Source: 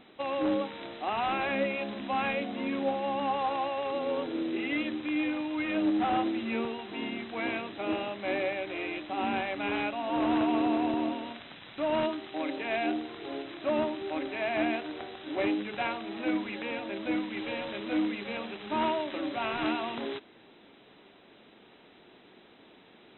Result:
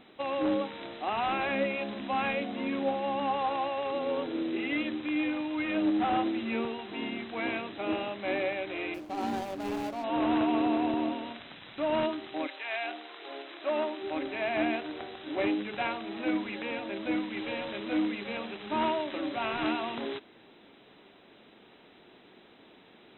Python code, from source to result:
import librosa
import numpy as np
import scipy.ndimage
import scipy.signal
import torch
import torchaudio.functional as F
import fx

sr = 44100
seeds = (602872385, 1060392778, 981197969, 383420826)

y = fx.median_filter(x, sr, points=25, at=(8.94, 10.04))
y = fx.highpass(y, sr, hz=fx.line((12.46, 1100.0), (14.02, 310.0)), slope=12, at=(12.46, 14.02), fade=0.02)